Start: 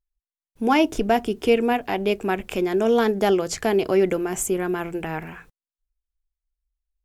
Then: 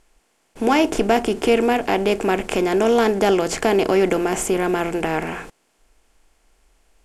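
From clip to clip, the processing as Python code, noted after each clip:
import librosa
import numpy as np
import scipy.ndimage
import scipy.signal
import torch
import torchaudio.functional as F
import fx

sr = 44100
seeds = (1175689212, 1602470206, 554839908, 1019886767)

y = fx.bin_compress(x, sr, power=0.6)
y = scipy.signal.sosfilt(scipy.signal.butter(2, 11000.0, 'lowpass', fs=sr, output='sos'), y)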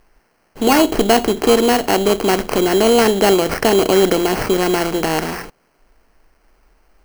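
y = fx.sample_hold(x, sr, seeds[0], rate_hz=3600.0, jitter_pct=0)
y = y * librosa.db_to_amplitude(4.0)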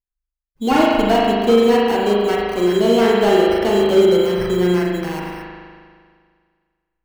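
y = fx.bin_expand(x, sr, power=2.0)
y = fx.rev_spring(y, sr, rt60_s=1.9, pass_ms=(39,), chirp_ms=60, drr_db=-3.5)
y = fx.slew_limit(y, sr, full_power_hz=320.0)
y = y * librosa.db_to_amplitude(-1.5)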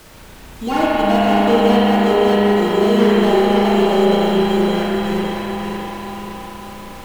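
y = fx.dmg_noise_colour(x, sr, seeds[1], colour='pink', level_db=-38.0)
y = fx.echo_feedback(y, sr, ms=559, feedback_pct=42, wet_db=-4)
y = fx.rev_spring(y, sr, rt60_s=4.0, pass_ms=(34, 49), chirp_ms=35, drr_db=-4.0)
y = y * librosa.db_to_amplitude(-5.0)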